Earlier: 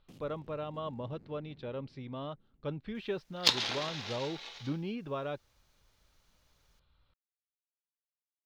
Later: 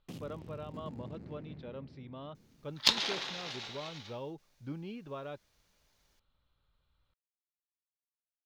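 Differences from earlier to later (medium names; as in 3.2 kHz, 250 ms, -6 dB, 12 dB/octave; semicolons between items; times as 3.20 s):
speech -5.5 dB; first sound +9.5 dB; second sound: entry -0.60 s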